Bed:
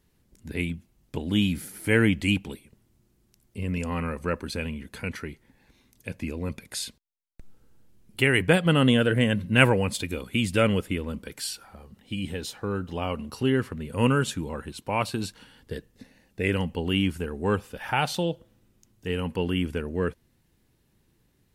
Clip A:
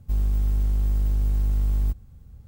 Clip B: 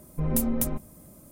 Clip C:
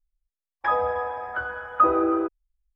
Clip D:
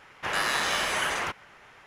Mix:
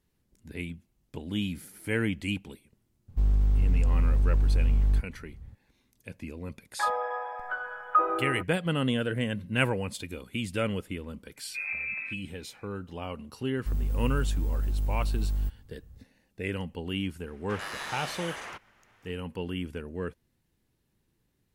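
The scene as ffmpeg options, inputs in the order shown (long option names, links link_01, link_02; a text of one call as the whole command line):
ffmpeg -i bed.wav -i cue0.wav -i cue1.wav -i cue2.wav -i cue3.wav -filter_complex "[1:a]asplit=2[link_01][link_02];[0:a]volume=-7.5dB[link_03];[link_01]aemphasis=mode=reproduction:type=50fm[link_04];[3:a]highpass=550[link_05];[2:a]lowpass=frequency=2200:width_type=q:width=0.5098,lowpass=frequency=2200:width_type=q:width=0.6013,lowpass=frequency=2200:width_type=q:width=0.9,lowpass=frequency=2200:width_type=q:width=2.563,afreqshift=-2600[link_06];[link_02]highshelf=frequency=12000:gain=4[link_07];[link_04]atrim=end=2.47,asetpts=PTS-STARTPTS,volume=-1dB,afade=type=in:duration=0.004:curve=hsin,afade=type=out:start_time=2.466:duration=0.004:curve=hsin,adelay=3080[link_08];[link_05]atrim=end=2.75,asetpts=PTS-STARTPTS,volume=-4dB,afade=type=in:duration=0.004:curve=hsin,afade=type=out:start_time=2.746:duration=0.004:curve=hsin,adelay=6150[link_09];[link_06]atrim=end=1.31,asetpts=PTS-STARTPTS,volume=-8.5dB,afade=type=in:duration=0.004:curve=hsin,afade=type=out:start_time=1.306:duration=0.004:curve=hsin,adelay=11360[link_10];[link_07]atrim=end=2.47,asetpts=PTS-STARTPTS,volume=-6dB,afade=type=in:duration=0.004:curve=hsin,afade=type=out:start_time=2.466:duration=0.004:curve=hsin,adelay=13570[link_11];[4:a]atrim=end=1.86,asetpts=PTS-STARTPTS,volume=-11dB,afade=type=in:duration=0.004:curve=hsin,afade=type=out:start_time=1.856:duration=0.004:curve=hsin,adelay=17260[link_12];[link_03][link_08][link_09][link_10][link_11][link_12]amix=inputs=6:normalize=0" out.wav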